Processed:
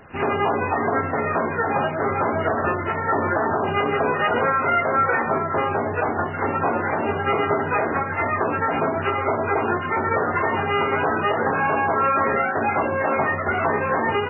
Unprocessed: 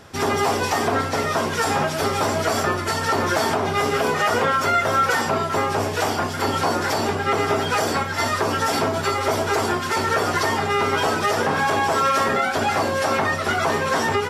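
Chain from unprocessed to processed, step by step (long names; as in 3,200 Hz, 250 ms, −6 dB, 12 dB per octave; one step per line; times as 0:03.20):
mains-hum notches 50/100/150/200/250 Hz
MP3 8 kbit/s 11,025 Hz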